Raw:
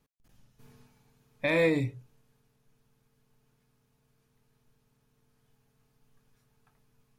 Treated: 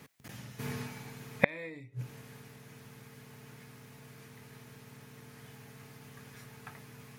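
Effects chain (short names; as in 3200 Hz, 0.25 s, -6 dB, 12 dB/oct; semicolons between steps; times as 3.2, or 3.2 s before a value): HPF 86 Hz 24 dB/oct; bell 2000 Hz +7.5 dB 0.58 oct; in parallel at -2 dB: compressor, threshold -44 dBFS, peak gain reduction 22 dB; on the sum: flipped gate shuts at -24 dBFS, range -35 dB; gain +14.5 dB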